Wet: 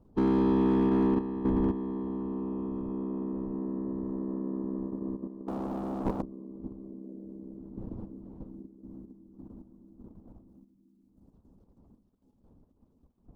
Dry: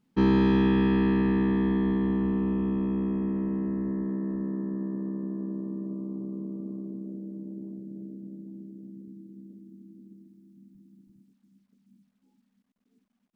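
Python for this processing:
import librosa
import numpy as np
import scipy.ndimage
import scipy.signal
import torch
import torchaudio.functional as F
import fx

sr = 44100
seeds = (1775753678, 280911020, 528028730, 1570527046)

y = fx.dmg_wind(x, sr, seeds[0], corner_hz=120.0, level_db=-43.0)
y = fx.leveller(y, sr, passes=5, at=(5.48, 6.22))
y = fx.hpss(y, sr, part='harmonic', gain_db=-10)
y = fx.level_steps(y, sr, step_db=10)
y = fx.graphic_eq(y, sr, hz=(125, 250, 500, 1000, 2000), db=(-4, 8, 5, 10, -10))
y = np.clip(y, -10.0 ** (-19.0 / 20.0), 10.0 ** (-19.0 / 20.0))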